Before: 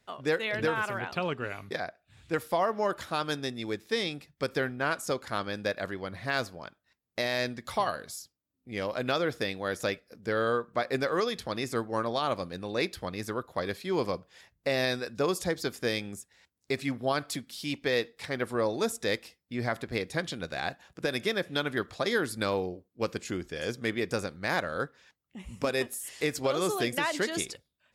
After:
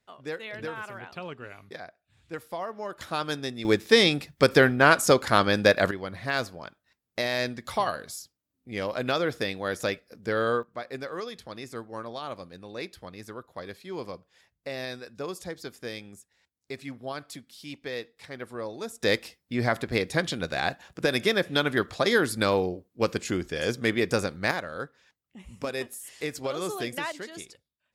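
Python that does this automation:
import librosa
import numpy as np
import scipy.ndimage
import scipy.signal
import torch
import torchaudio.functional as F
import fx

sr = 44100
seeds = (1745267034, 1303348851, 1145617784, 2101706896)

y = fx.gain(x, sr, db=fx.steps((0.0, -7.0), (3.01, 1.0), (3.65, 11.5), (5.91, 2.0), (10.63, -7.0), (19.03, 5.5), (24.51, -3.0), (27.12, -9.5)))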